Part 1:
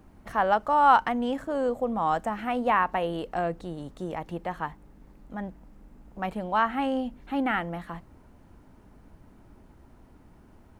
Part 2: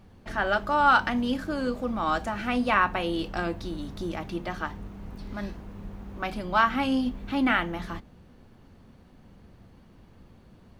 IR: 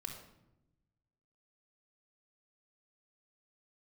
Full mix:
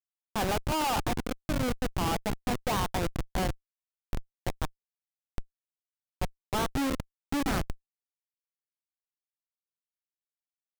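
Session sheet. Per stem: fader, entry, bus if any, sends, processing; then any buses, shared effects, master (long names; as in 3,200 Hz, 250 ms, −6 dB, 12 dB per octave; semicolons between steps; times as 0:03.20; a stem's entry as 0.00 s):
0.0 dB, 0.00 s, send −8.5 dB, high-shelf EQ 5,100 Hz −7.5 dB
+2.5 dB, 0.00 s, send −13 dB, through-zero flanger with one copy inverted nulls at 1.3 Hz, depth 3.4 ms; automatic ducking −20 dB, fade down 1.85 s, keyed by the first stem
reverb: on, RT60 0.95 s, pre-delay 3 ms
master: comparator with hysteresis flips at −22.5 dBFS; wow of a warped record 45 rpm, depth 100 cents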